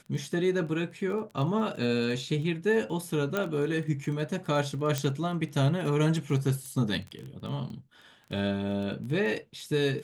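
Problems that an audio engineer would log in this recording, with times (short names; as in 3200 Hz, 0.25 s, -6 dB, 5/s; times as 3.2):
crackle 16/s -35 dBFS
3.37 pop -15 dBFS
4.98 pop -14 dBFS
6.66 pop -28 dBFS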